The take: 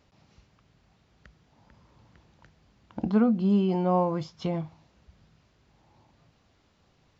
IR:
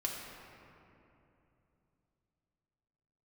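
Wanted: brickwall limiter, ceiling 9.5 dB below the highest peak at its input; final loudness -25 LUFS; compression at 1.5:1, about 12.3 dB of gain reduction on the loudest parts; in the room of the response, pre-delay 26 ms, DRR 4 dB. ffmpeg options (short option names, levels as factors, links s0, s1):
-filter_complex "[0:a]acompressor=threshold=0.002:ratio=1.5,alimiter=level_in=3.16:limit=0.0631:level=0:latency=1,volume=0.316,asplit=2[s0][s1];[1:a]atrim=start_sample=2205,adelay=26[s2];[s1][s2]afir=irnorm=-1:irlink=0,volume=0.447[s3];[s0][s3]amix=inputs=2:normalize=0,volume=7.08"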